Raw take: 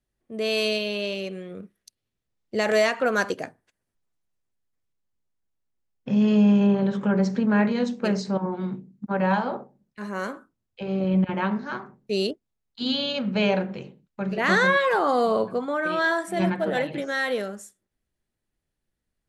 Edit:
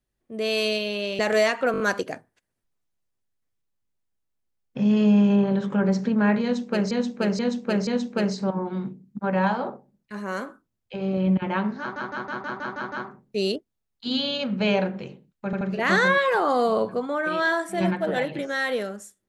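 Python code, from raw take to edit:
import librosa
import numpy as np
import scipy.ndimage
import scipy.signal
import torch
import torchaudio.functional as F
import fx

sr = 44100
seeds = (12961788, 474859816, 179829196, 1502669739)

y = fx.edit(x, sr, fx.cut(start_s=1.19, length_s=1.39),
    fx.stutter(start_s=3.11, slice_s=0.02, count=5),
    fx.repeat(start_s=7.74, length_s=0.48, count=4),
    fx.stutter(start_s=11.67, slice_s=0.16, count=8),
    fx.stutter(start_s=14.2, slice_s=0.08, count=3), tone=tone)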